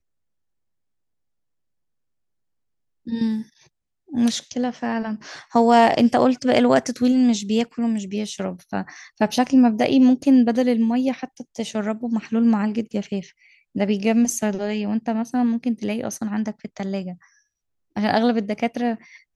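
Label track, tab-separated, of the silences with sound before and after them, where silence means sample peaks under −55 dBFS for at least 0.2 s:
3.680000	4.080000	silence
17.410000	17.960000	silence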